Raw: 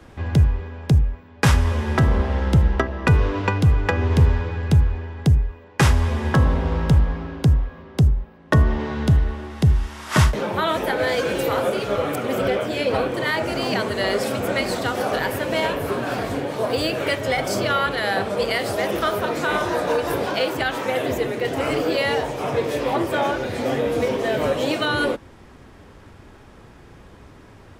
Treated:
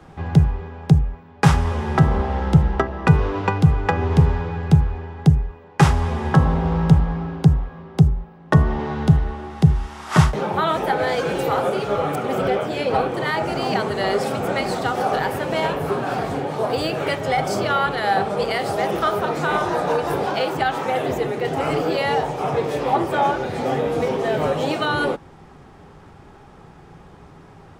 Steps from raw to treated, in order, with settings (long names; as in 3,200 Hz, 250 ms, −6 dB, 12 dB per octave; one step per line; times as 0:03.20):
thirty-one-band graphic EQ 160 Hz +12 dB, 400 Hz +5 dB, 800 Hz +10 dB, 1,250 Hz +5 dB, 12,500 Hz −6 dB
level −2.5 dB